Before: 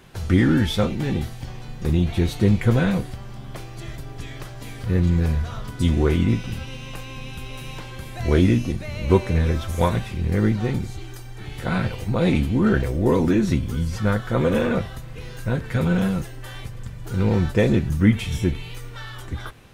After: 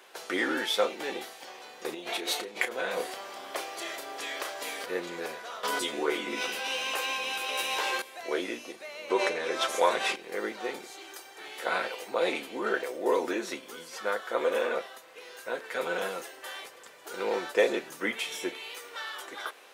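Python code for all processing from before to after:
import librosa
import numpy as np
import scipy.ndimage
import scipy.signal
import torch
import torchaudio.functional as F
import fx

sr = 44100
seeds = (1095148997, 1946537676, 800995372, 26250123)

y = fx.chain(x, sr, fx.over_compress(threshold_db=-24.0, ratio=-1.0),
    fx.doubler(ms=32.0, db=-10.0), at=(1.94, 4.86))
y = fx.chain(y, sr, fx.doubler(ms=14.0, db=-2.5),
    fx.env_flatten(amount_pct=70), at=(5.63, 8.02))
y = fx.chain(y, sr, fx.lowpass(hz=9200.0, slope=12),
    fx.env_flatten(amount_pct=70), at=(9.1, 10.16))
y = scipy.signal.sosfilt(scipy.signal.butter(4, 430.0, 'highpass', fs=sr, output='sos'), y)
y = fx.rider(y, sr, range_db=5, speed_s=2.0)
y = y * librosa.db_to_amplitude(-4.0)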